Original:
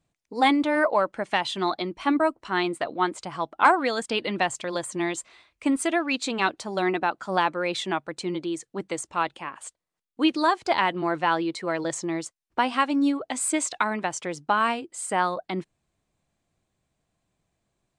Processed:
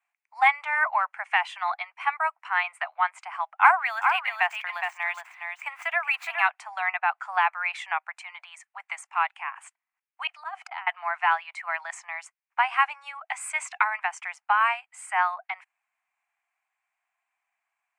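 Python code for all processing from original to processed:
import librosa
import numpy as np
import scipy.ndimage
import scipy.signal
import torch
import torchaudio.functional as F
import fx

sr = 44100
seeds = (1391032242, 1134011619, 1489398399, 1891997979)

y = fx.chain(x, sr, fx.median_filter(points=5),
    fx.echo_single(ms=414, db=-6.0), at=(3.48, 6.47))
y = fx.chain(y, sr, fx.auto_swell(attack_ms=332.0),
    fx.small_body(hz=(210.0, 710.0, 1300.0, 3000.0), ring_ms=30, db=9),
    fx.over_compress(threshold_db=-34.0, ratio=-0.5), at=(10.27, 10.87))
y = scipy.signal.sosfilt(scipy.signal.butter(12, 730.0, 'highpass', fs=sr, output='sos'), y)
y = fx.high_shelf_res(y, sr, hz=3000.0, db=-8.5, q=3.0)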